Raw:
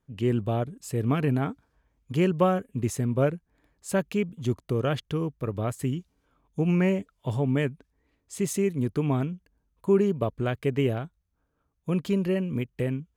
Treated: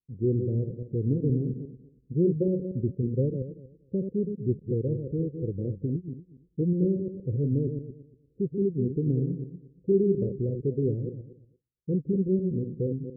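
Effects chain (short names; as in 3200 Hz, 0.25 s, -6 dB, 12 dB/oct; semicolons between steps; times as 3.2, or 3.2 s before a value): regenerating reverse delay 0.118 s, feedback 40%, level -6.5 dB; gate with hold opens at -52 dBFS; rippled Chebyshev low-pass 520 Hz, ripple 3 dB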